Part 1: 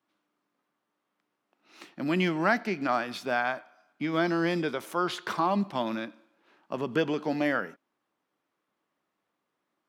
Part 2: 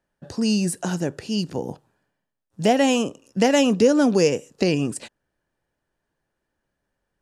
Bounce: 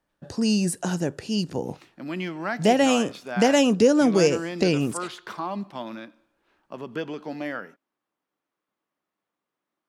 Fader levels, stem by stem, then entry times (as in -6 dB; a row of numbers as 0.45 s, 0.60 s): -4.5 dB, -1.0 dB; 0.00 s, 0.00 s